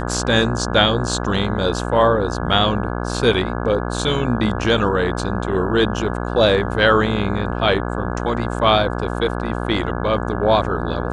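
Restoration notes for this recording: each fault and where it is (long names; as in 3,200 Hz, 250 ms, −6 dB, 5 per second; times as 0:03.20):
mains buzz 60 Hz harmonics 28 −24 dBFS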